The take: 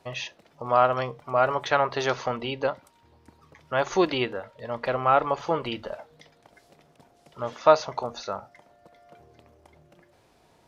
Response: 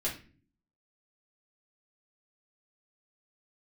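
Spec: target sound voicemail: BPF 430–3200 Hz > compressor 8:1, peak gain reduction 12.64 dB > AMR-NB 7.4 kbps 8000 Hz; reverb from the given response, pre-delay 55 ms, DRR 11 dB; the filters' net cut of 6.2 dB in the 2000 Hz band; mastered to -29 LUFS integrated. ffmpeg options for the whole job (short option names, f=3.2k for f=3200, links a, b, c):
-filter_complex "[0:a]equalizer=f=2k:t=o:g=-8.5,asplit=2[a][b];[1:a]atrim=start_sample=2205,adelay=55[c];[b][c]afir=irnorm=-1:irlink=0,volume=-15.5dB[d];[a][d]amix=inputs=2:normalize=0,highpass=430,lowpass=3.2k,acompressor=threshold=-25dB:ratio=8,volume=5.5dB" -ar 8000 -c:a libopencore_amrnb -b:a 7400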